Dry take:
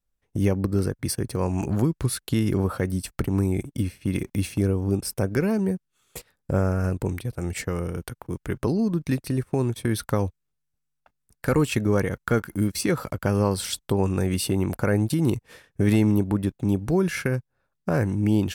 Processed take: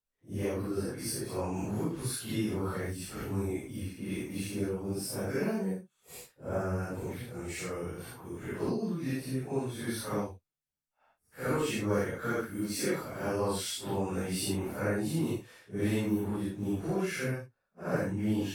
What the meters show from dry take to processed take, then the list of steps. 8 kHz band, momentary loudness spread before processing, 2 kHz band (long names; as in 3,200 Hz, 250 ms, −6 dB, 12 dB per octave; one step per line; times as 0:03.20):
−5.5 dB, 8 LU, −6.0 dB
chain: random phases in long frames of 200 ms
low-shelf EQ 160 Hz −10.5 dB
level −5.5 dB